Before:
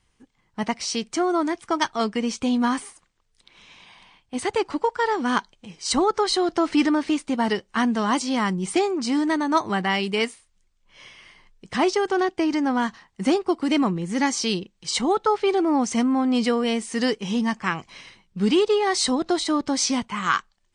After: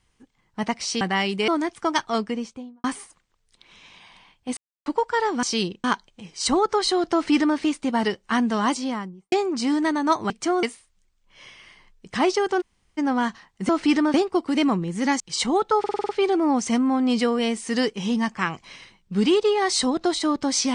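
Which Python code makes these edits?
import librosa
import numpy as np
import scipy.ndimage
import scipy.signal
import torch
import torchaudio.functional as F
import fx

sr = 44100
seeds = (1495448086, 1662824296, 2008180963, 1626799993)

y = fx.studio_fade_out(x, sr, start_s=1.95, length_s=0.75)
y = fx.studio_fade_out(y, sr, start_s=8.1, length_s=0.67)
y = fx.edit(y, sr, fx.swap(start_s=1.01, length_s=0.33, other_s=9.75, other_length_s=0.47),
    fx.silence(start_s=4.43, length_s=0.29),
    fx.duplicate(start_s=6.58, length_s=0.45, to_s=13.28),
    fx.room_tone_fill(start_s=12.2, length_s=0.37, crossfade_s=0.02),
    fx.move(start_s=14.34, length_s=0.41, to_s=5.29),
    fx.stutter(start_s=15.34, slice_s=0.05, count=7), tone=tone)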